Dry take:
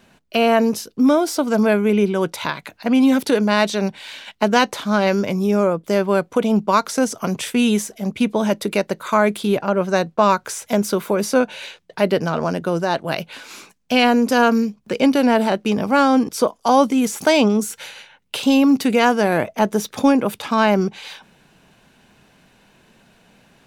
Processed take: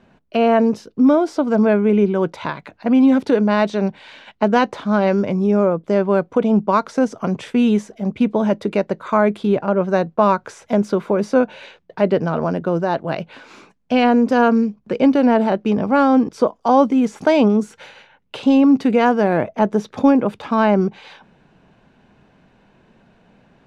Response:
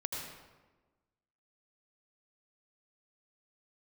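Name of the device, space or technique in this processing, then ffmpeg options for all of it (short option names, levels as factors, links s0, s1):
through cloth: -af "lowpass=6800,highshelf=f=2300:g=-14.5,volume=1.26"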